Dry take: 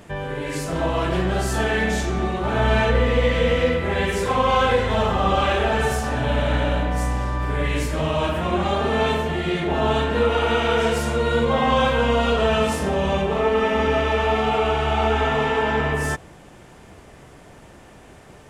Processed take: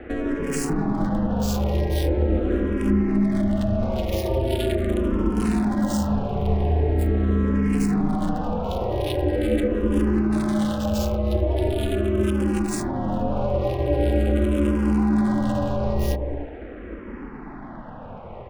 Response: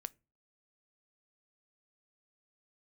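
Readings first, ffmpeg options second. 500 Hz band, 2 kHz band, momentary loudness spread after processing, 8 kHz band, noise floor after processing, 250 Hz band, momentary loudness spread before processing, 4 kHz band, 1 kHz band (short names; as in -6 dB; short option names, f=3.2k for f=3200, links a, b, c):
-4.5 dB, -13.0 dB, 10 LU, -2.5 dB, -37 dBFS, +5.0 dB, 5 LU, -11.0 dB, -10.0 dB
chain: -filter_complex "[0:a]highpass=62,acrossover=split=340|3000[a][b][c];[b]acompressor=threshold=-32dB:ratio=6[d];[a][d][c]amix=inputs=3:normalize=0,asplit=2[e][f];[f]alimiter=limit=-22.5dB:level=0:latency=1:release=43,volume=2dB[g];[e][g]amix=inputs=2:normalize=0,acompressor=threshold=-21dB:ratio=12,acrossover=split=690|2300[h][i][j];[h]aecho=1:1:148.7|192.4|288.6:0.631|0.316|0.794[k];[i]asoftclip=type=tanh:threshold=-37dB[l];[j]acrusher=bits=4:mix=0:aa=0.5[m];[k][l][m]amix=inputs=3:normalize=0,aeval=exprs='val(0)*sin(2*PI*140*n/s)':c=same,asplit=2[n][o];[o]afreqshift=-0.42[p];[n][p]amix=inputs=2:normalize=1,volume=6dB"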